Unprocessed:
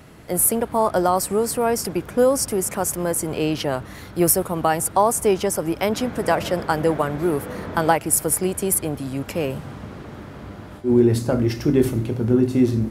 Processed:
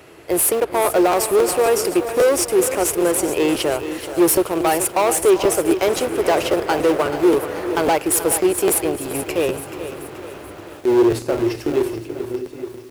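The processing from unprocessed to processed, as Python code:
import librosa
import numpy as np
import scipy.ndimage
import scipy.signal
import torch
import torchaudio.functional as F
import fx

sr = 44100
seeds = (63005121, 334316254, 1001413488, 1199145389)

p1 = fx.fade_out_tail(x, sr, length_s=2.31)
p2 = p1 + 10.0 ** (-19.5 / 20.0) * np.pad(p1, (int(383 * sr / 1000.0), 0))[:len(p1)]
p3 = fx.schmitt(p2, sr, flips_db=-21.5)
p4 = p2 + (p3 * librosa.db_to_amplitude(-10.0))
p5 = fx.peak_eq(p4, sr, hz=2600.0, db=5.5, octaves=0.37)
p6 = np.clip(10.0 ** (16.0 / 20.0) * p5, -1.0, 1.0) / 10.0 ** (16.0 / 20.0)
p7 = scipy.signal.sosfilt(scipy.signal.butter(2, 53.0, 'highpass', fs=sr, output='sos'), p6)
p8 = fx.low_shelf_res(p7, sr, hz=280.0, db=-7.0, q=3.0)
p9 = fx.buffer_crackle(p8, sr, first_s=0.84, period_s=0.27, block=512, kind='repeat')
p10 = fx.echo_crushed(p9, sr, ms=431, feedback_pct=55, bits=7, wet_db=-11)
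y = p10 * librosa.db_to_amplitude(2.0)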